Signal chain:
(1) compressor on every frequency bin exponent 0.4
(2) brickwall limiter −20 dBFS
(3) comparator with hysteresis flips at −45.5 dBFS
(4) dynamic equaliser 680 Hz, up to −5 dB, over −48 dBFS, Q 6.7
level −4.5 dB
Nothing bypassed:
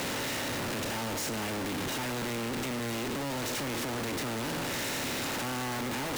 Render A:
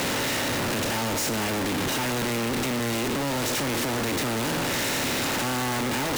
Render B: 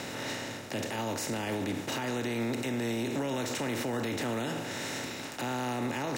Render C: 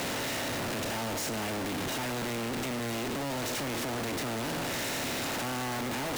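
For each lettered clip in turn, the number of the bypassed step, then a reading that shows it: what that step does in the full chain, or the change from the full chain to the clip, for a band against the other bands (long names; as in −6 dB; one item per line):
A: 2, average gain reduction 5.0 dB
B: 3, distortion level −2 dB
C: 4, change in crest factor −1.5 dB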